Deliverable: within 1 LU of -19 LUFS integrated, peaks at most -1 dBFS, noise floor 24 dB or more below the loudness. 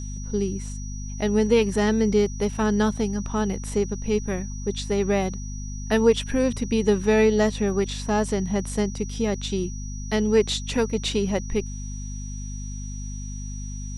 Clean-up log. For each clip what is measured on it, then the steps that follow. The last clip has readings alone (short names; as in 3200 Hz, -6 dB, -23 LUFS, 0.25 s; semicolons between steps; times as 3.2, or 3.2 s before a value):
hum 50 Hz; harmonics up to 250 Hz; hum level -30 dBFS; steady tone 5800 Hz; tone level -41 dBFS; loudness -24.0 LUFS; peak -7.0 dBFS; loudness target -19.0 LUFS
-> de-hum 50 Hz, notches 5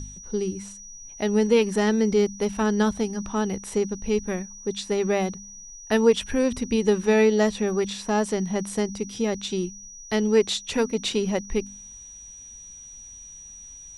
hum none; steady tone 5800 Hz; tone level -41 dBFS
-> notch 5800 Hz, Q 30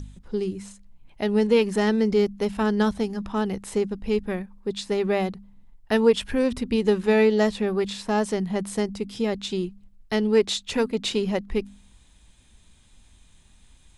steady tone none; loudness -24.5 LUFS; peak -7.0 dBFS; loudness target -19.0 LUFS
-> gain +5.5 dB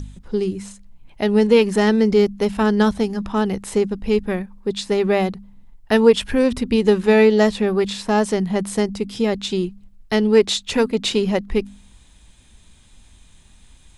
loudness -19.0 LUFS; peak -1.5 dBFS; noise floor -50 dBFS